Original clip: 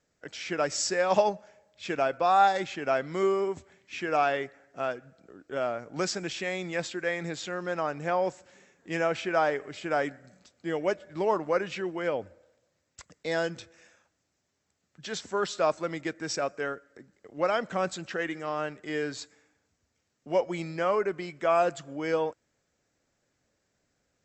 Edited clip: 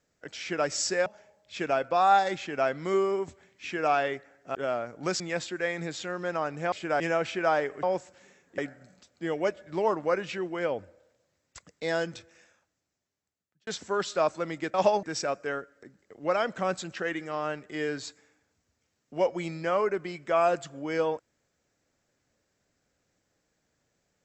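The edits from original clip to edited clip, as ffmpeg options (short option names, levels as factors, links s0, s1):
-filter_complex "[0:a]asplit=11[s0][s1][s2][s3][s4][s5][s6][s7][s8][s9][s10];[s0]atrim=end=1.062[s11];[s1]atrim=start=1.348:end=4.842[s12];[s2]atrim=start=5.478:end=6.132[s13];[s3]atrim=start=6.628:end=8.152[s14];[s4]atrim=start=9.728:end=10.012[s15];[s5]atrim=start=8.898:end=9.732[s16];[s6]atrim=start=8.148:end=8.902[s17];[s7]atrim=start=10.008:end=15.1,asetpts=PTS-STARTPTS,afade=t=out:st=3.572:d=1.52[s18];[s8]atrim=start=15.1:end=16.172,asetpts=PTS-STARTPTS,afade=t=in:d=0.004:c=hsin[s19];[s9]atrim=start=1.058:end=1.352[s20];[s10]atrim=start=16.168[s21];[s11][s12]acrossfade=d=0.004:c1=hsin:c2=hsin[s22];[s22][s13]acrossfade=d=0.004:c1=hsin:c2=hsin[s23];[s23][s14]acrossfade=d=0.004:c1=hsin:c2=hsin[s24];[s24][s15]acrossfade=d=0.004:c1=hsin:c2=hsin[s25];[s25][s16]acrossfade=d=0.004:c1=hsin:c2=hsin[s26];[s26][s17]acrossfade=d=0.004:c1=hsin:c2=hsin[s27];[s18][s19]concat=n=2:v=0:a=1[s28];[s27][s28]acrossfade=d=0.004:c1=hsin:c2=hsin[s29];[s29][s20]acrossfade=d=0.004:c1=hsin:c2=hsin[s30];[s30][s21]acrossfade=d=0.004:c1=hsin:c2=hsin"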